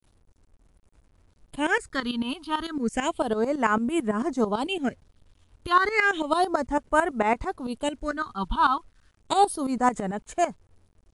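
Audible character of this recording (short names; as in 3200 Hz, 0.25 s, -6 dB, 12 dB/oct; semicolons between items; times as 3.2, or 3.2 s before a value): phasing stages 6, 0.32 Hz, lowest notch 520–4500 Hz; tremolo saw up 9 Hz, depth 80%; a quantiser's noise floor 12-bit, dither none; MP3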